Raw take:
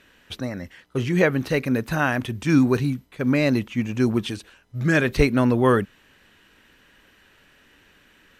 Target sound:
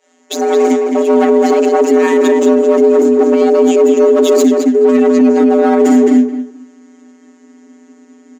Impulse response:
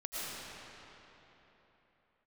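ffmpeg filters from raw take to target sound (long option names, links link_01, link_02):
-filter_complex "[0:a]aeval=exprs='val(0)+0.5*0.0376*sgn(val(0))':channel_layout=same,agate=range=-51dB:threshold=-31dB:ratio=16:detection=peak,lowpass=frequency=6700:width_type=q:width=11,tiltshelf=frequency=1200:gain=9.5,areverse,acompressor=threshold=-23dB:ratio=8,areverse,afftfilt=real='hypot(re,im)*cos(PI*b)':imag='0':win_size=1024:overlap=0.75,volume=29dB,asoftclip=hard,volume=-29dB,asubboost=boost=6:cutoff=120,afreqshift=250,asplit=2[link_01][link_02];[link_02]adelay=215,lowpass=frequency=2900:poles=1,volume=-3.5dB,asplit=2[link_03][link_04];[link_04]adelay=215,lowpass=frequency=2900:poles=1,volume=0.2,asplit=2[link_05][link_06];[link_06]adelay=215,lowpass=frequency=2900:poles=1,volume=0.2[link_07];[link_03][link_05][link_07]amix=inputs=3:normalize=0[link_08];[link_01][link_08]amix=inputs=2:normalize=0,alimiter=level_in=23dB:limit=-1dB:release=50:level=0:latency=1,volume=-1dB"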